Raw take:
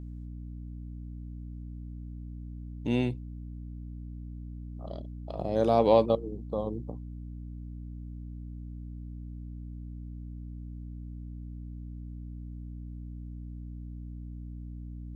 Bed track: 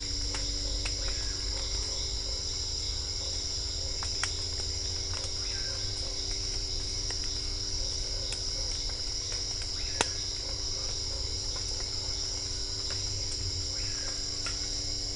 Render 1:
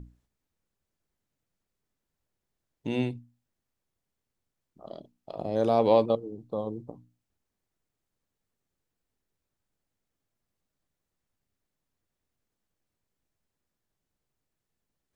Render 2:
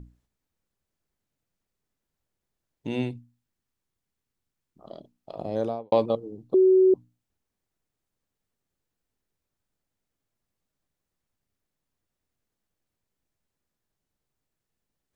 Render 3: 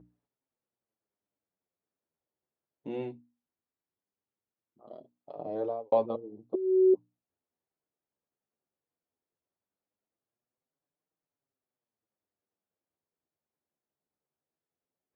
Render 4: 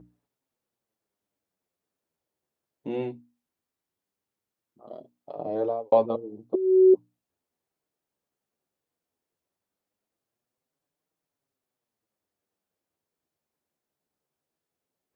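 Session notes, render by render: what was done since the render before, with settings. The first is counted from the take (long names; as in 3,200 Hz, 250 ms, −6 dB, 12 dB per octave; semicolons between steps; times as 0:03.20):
mains-hum notches 60/120/180/240/300 Hz
0:03.15–0:04.89: parametric band 600 Hz −5 dB; 0:05.51–0:05.92: fade out and dull; 0:06.54–0:06.94: beep over 375 Hz −14 dBFS
resonant band-pass 560 Hz, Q 0.7; flanger 0.18 Hz, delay 6.3 ms, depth 8.1 ms, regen −9%
level +5.5 dB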